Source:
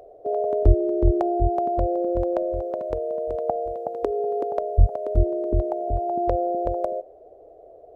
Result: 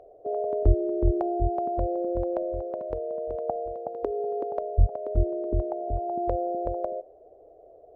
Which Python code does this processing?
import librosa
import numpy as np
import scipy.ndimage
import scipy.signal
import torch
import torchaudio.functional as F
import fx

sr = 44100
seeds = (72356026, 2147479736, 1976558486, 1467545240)

y = fx.lowpass(x, sr, hz=1600.0, slope=6)
y = y * 10.0 ** (-4.0 / 20.0)